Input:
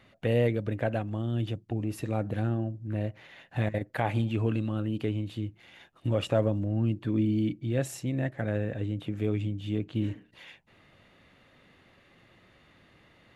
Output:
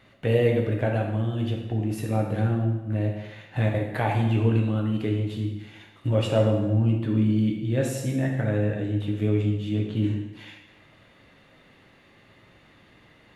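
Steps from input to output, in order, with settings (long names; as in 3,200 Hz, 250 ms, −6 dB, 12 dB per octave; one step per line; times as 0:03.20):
dense smooth reverb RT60 1 s, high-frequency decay 0.9×, DRR 0 dB
level +1.5 dB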